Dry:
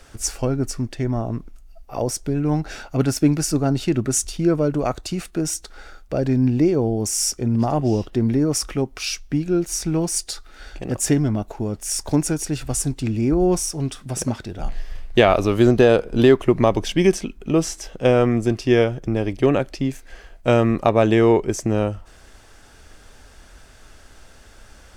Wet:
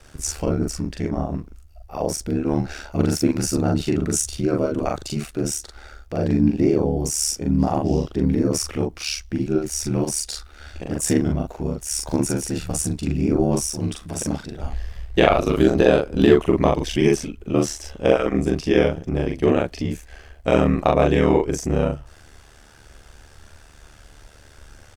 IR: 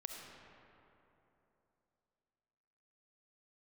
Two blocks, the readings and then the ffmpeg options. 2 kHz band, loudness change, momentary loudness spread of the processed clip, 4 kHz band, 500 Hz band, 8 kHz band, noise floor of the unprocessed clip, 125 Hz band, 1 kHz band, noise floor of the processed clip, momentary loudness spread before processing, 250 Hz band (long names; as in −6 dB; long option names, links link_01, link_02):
−1.0 dB, −1.0 dB, 11 LU, −1.0 dB, −1.0 dB, −1.0 dB, −47 dBFS, −2.0 dB, −0.5 dB, −48 dBFS, 11 LU, −1.0 dB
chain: -filter_complex "[0:a]aeval=exprs='val(0)*sin(2*PI*37*n/s)':channel_layout=same,asplit=2[link_01][link_02];[link_02]adelay=41,volume=-2dB[link_03];[link_01][link_03]amix=inputs=2:normalize=0"